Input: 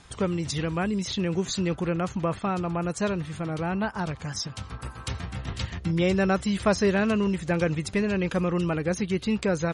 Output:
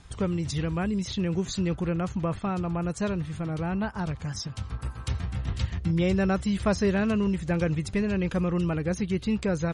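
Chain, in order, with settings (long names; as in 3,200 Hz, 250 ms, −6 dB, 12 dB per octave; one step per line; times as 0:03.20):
low-shelf EQ 140 Hz +11.5 dB
level −4 dB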